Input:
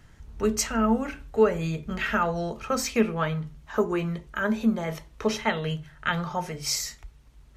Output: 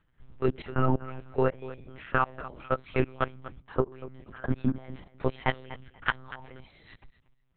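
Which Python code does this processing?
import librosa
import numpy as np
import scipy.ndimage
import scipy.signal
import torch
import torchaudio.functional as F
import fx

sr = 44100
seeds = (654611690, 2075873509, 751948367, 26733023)

p1 = fx.level_steps(x, sr, step_db=24)
p2 = p1 + fx.echo_feedback(p1, sr, ms=243, feedback_pct=16, wet_db=-15.5, dry=0)
p3 = fx.lpc_monotone(p2, sr, seeds[0], pitch_hz=130.0, order=10)
y = p3 * 10.0 ** (2.0 / 20.0)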